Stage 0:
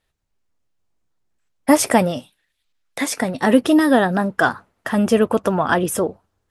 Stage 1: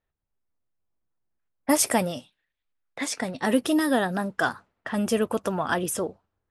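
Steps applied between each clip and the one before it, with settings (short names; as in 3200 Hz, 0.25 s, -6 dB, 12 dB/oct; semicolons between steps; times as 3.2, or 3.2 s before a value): low-pass opened by the level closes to 1600 Hz, open at -15 dBFS; high shelf 3600 Hz +8.5 dB; gain -8.5 dB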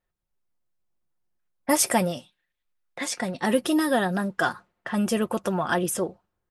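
comb 5.6 ms, depth 39%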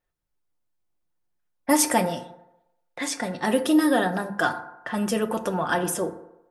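notches 50/100/150/200 Hz; FDN reverb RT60 0.88 s, low-frequency decay 0.8×, high-frequency decay 0.4×, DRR 7.5 dB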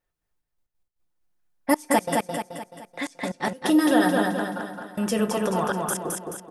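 step gate "xxxxx..x.x..xxxx" 181 bpm -24 dB; on a send: feedback echo 0.215 s, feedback 47%, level -3 dB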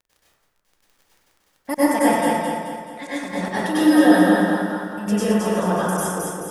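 crackle 15/s -37 dBFS; plate-style reverb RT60 1.1 s, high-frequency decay 0.5×, pre-delay 85 ms, DRR -9.5 dB; gain -6 dB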